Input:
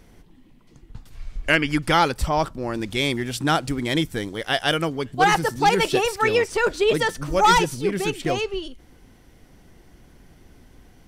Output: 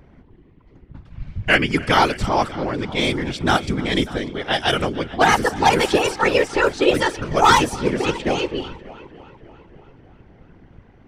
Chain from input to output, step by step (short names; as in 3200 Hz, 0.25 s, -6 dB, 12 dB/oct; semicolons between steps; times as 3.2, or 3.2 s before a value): multi-head echo 0.296 s, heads first and second, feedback 48%, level -20.5 dB; low-pass opened by the level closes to 1900 Hz, open at -15 dBFS; whisperiser; gain +2.5 dB